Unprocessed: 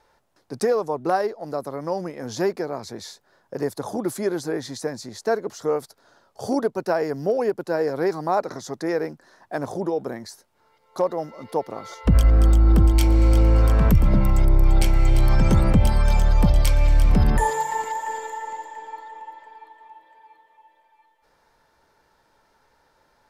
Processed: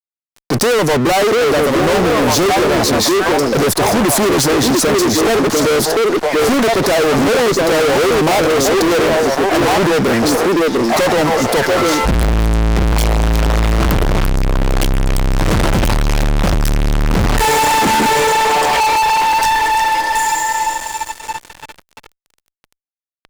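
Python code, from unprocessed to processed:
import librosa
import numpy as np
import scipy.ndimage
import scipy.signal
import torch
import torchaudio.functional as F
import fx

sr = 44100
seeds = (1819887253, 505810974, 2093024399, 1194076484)

y = fx.echo_stepped(x, sr, ms=694, hz=330.0, octaves=1.4, feedback_pct=70, wet_db=-2.0)
y = fx.fuzz(y, sr, gain_db=42.0, gate_db=-51.0)
y = fx.power_curve(y, sr, exponent=0.7)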